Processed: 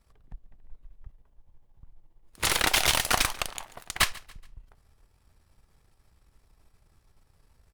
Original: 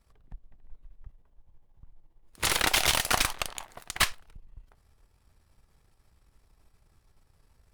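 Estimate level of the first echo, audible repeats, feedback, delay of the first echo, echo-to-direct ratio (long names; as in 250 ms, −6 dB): −21.5 dB, 2, 39%, 141 ms, −21.0 dB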